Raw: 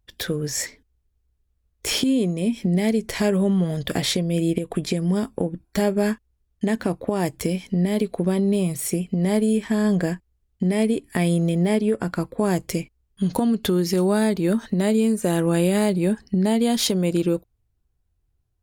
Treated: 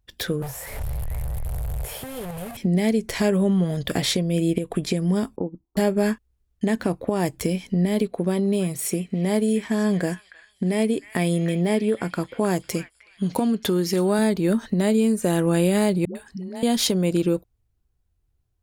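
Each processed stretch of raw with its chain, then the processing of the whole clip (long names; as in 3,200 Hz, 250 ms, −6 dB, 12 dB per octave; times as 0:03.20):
0:00.42–0:02.57: linear delta modulator 64 kbit/s, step −19.5 dBFS + drawn EQ curve 130 Hz 0 dB, 190 Hz −13 dB, 290 Hz −22 dB, 520 Hz −4 dB, 750 Hz −3 dB, 1,200 Hz −11 dB, 1,800 Hz −12 dB, 3,500 Hz −17 dB, 5,900 Hz −21 dB, 15,000 Hz +4 dB + echo through a band-pass that steps 227 ms, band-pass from 3,700 Hz, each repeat −0.7 octaves, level −8.5 dB
0:05.36–0:05.77: Chebyshev low-pass with heavy ripple 1,300 Hz, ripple 6 dB + expander for the loud parts, over −39 dBFS
0:08.07–0:14.19: low-shelf EQ 88 Hz −11.5 dB + echo through a band-pass that steps 311 ms, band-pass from 1,900 Hz, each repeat 0.7 octaves, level −9 dB + one half of a high-frequency compander decoder only
0:16.05–0:16.63: low-shelf EQ 490 Hz −7.5 dB + downward compressor 5 to 1, threshold −29 dBFS + all-pass dispersion highs, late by 102 ms, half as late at 370 Hz
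whole clip: no processing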